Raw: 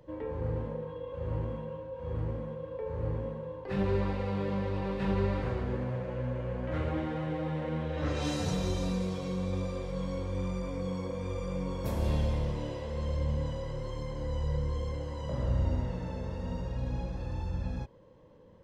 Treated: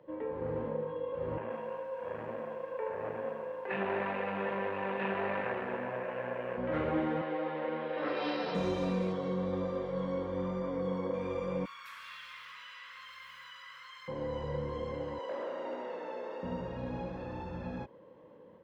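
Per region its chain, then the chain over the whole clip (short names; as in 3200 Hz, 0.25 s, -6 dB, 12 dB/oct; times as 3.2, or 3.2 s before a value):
1.37–6.57 tube stage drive 29 dB, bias 0.6 + speaker cabinet 130–3900 Hz, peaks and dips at 160 Hz -8 dB, 300 Hz -8 dB, 670 Hz +4 dB, 960 Hz +4 dB, 1700 Hz +9 dB, 2600 Hz +9 dB + lo-fi delay 0.132 s, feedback 55%, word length 9-bit, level -14 dB
7.21–8.55 Bessel high-pass 390 Hz + careless resampling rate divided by 4×, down none, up filtered
9.12–11.14 Butterworth band-stop 2500 Hz, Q 5.1 + high shelf 6600 Hz -9 dB
11.65–14.08 modulation noise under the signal 34 dB + elliptic high-pass 1200 Hz + fast leveller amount 50%
15.18–16.43 HPF 340 Hz 24 dB/oct + hard clip -36 dBFS
whole clip: AGC gain up to 3.5 dB; HPF 50 Hz; three-band isolator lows -17 dB, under 180 Hz, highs -17 dB, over 3200 Hz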